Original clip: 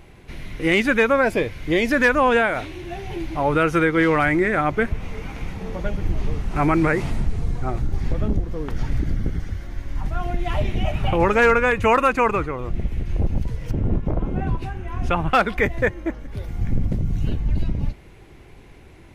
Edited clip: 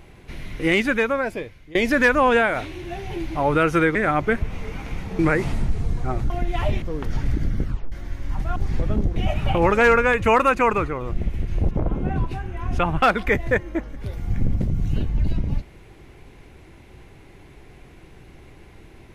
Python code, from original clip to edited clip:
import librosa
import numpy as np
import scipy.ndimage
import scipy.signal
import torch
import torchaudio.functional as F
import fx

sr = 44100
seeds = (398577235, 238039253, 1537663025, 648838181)

y = fx.edit(x, sr, fx.fade_out_to(start_s=0.62, length_s=1.13, floor_db=-24.0),
    fx.cut(start_s=3.95, length_s=0.5),
    fx.cut(start_s=5.69, length_s=1.08),
    fx.swap(start_s=7.88, length_s=0.6, other_s=10.22, other_length_s=0.52),
    fx.tape_stop(start_s=9.3, length_s=0.28),
    fx.cut(start_s=13.29, length_s=0.73), tone=tone)